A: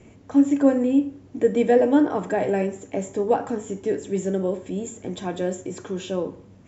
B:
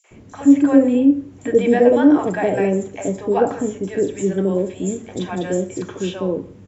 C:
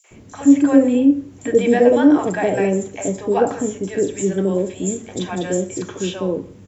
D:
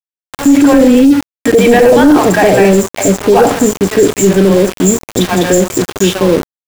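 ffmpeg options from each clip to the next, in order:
-filter_complex "[0:a]acrossover=split=680|4900[a][b][c];[b]adelay=40[d];[a]adelay=110[e];[e][d][c]amix=inputs=3:normalize=0,volume=6dB"
-af "highshelf=f=4.2k:g=8"
-af "aeval=exprs='val(0)*gte(abs(val(0)),0.0398)':c=same,apsyclip=15dB,volume=-1.5dB"

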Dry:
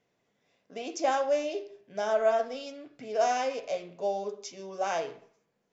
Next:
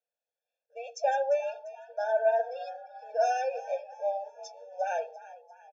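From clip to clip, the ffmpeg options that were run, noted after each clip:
-filter_complex "[0:a]afftdn=nr=17:nf=-40,asplit=5[a][b][c][d][e];[b]adelay=347,afreqshift=63,volume=-17dB[f];[c]adelay=694,afreqshift=126,volume=-23.2dB[g];[d]adelay=1041,afreqshift=189,volume=-29.4dB[h];[e]adelay=1388,afreqshift=252,volume=-35.6dB[i];[a][f][g][h][i]amix=inputs=5:normalize=0,afftfilt=real='re*eq(mod(floor(b*sr/1024/460),2),1)':imag='im*eq(mod(floor(b*sr/1024/460),2),1)':win_size=1024:overlap=0.75"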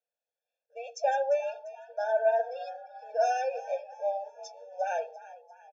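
-af anull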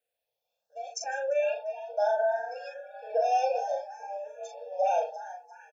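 -filter_complex "[0:a]alimiter=level_in=2.5dB:limit=-24dB:level=0:latency=1:release=39,volume=-2.5dB,asplit=2[a][b];[b]adelay=39,volume=-4dB[c];[a][c]amix=inputs=2:normalize=0,asplit=2[d][e];[e]afreqshift=0.67[f];[d][f]amix=inputs=2:normalize=1,volume=7.5dB"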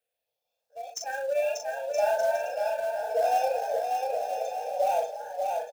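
-filter_complex "[0:a]acrossover=split=740[a][b];[b]acrusher=bits=3:mode=log:mix=0:aa=0.000001[c];[a][c]amix=inputs=2:normalize=0,aecho=1:1:590|973.5|1223|1385|1490:0.631|0.398|0.251|0.158|0.1"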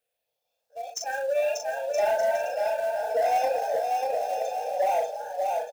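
-af "aeval=exprs='0.2*(cos(1*acos(clip(val(0)/0.2,-1,1)))-cos(1*PI/2))+0.0158*(cos(5*acos(clip(val(0)/0.2,-1,1)))-cos(5*PI/2))':c=same"

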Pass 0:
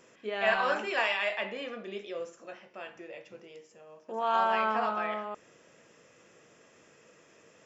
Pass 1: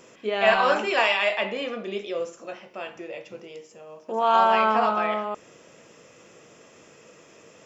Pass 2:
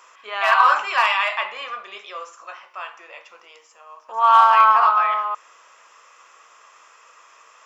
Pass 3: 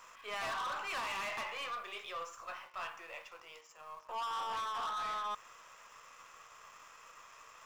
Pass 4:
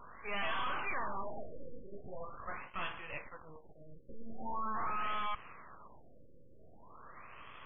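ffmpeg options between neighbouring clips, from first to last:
-af "equalizer=f=1.7k:w=3.1:g=-5,volume=8.5dB"
-af "asoftclip=type=hard:threshold=-12dB,highpass=f=1.1k:t=q:w=4.2"
-filter_complex "[0:a]acrossover=split=450[a][b];[b]acompressor=threshold=-23dB:ratio=6[c];[a][c]amix=inputs=2:normalize=0,asplit=2[d][e];[e]acrusher=bits=5:dc=4:mix=0:aa=0.000001,volume=-9.5dB[f];[d][f]amix=inputs=2:normalize=0,asoftclip=type=tanh:threshold=-28.5dB,volume=-7dB"
-af "aemphasis=mode=production:type=75fm,aeval=exprs='max(val(0),0)':c=same,afftfilt=real='re*lt(b*sr/1024,570*pow(3500/570,0.5+0.5*sin(2*PI*0.43*pts/sr)))':imag='im*lt(b*sr/1024,570*pow(3500/570,0.5+0.5*sin(2*PI*0.43*pts/sr)))':win_size=1024:overlap=0.75,volume=6dB"

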